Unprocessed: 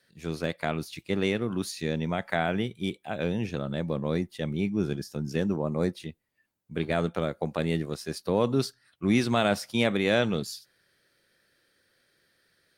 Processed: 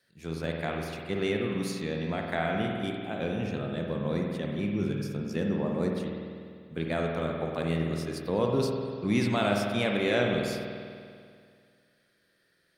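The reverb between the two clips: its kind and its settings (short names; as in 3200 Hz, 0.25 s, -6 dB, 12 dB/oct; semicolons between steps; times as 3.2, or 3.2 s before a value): spring tank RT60 2.2 s, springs 49 ms, chirp 50 ms, DRR 0.5 dB; gain -4 dB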